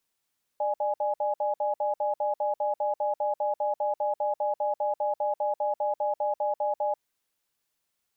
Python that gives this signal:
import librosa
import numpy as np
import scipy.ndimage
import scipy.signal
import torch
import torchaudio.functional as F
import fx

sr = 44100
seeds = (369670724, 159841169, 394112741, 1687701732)

y = fx.cadence(sr, length_s=6.38, low_hz=598.0, high_hz=833.0, on_s=0.14, off_s=0.06, level_db=-27.0)